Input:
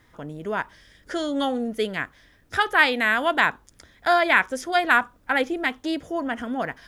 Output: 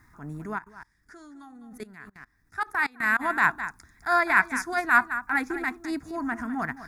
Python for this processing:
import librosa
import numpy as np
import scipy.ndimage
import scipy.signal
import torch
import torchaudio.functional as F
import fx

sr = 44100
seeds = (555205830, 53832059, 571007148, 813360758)

y = x + 10.0 ** (-13.0 / 20.0) * np.pad(x, (int(206 * sr / 1000.0), 0))[:len(x)]
y = fx.level_steps(y, sr, step_db=22, at=(0.57, 3.19), fade=0.02)
y = fx.fixed_phaser(y, sr, hz=1300.0, stages=4)
y = fx.transient(y, sr, attack_db=-8, sustain_db=-4)
y = y * librosa.db_to_amplitude(3.0)